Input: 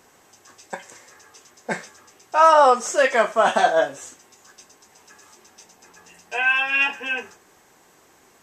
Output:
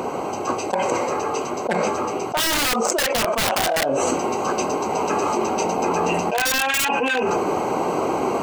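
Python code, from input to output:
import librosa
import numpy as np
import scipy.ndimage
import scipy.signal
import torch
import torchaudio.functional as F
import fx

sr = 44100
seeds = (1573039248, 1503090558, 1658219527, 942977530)

p1 = fx.wiener(x, sr, points=25)
p2 = fx.highpass(p1, sr, hz=310.0, slope=6)
p3 = fx.rider(p2, sr, range_db=10, speed_s=0.5)
p4 = p2 + F.gain(torch.from_numpy(p3), 1.5).numpy()
p5 = (np.mod(10.0 ** (7.5 / 20.0) * p4 + 1.0, 2.0) - 1.0) / 10.0 ** (7.5 / 20.0)
p6 = fx.env_flatten(p5, sr, amount_pct=100)
y = F.gain(torch.from_numpy(p6), -9.0).numpy()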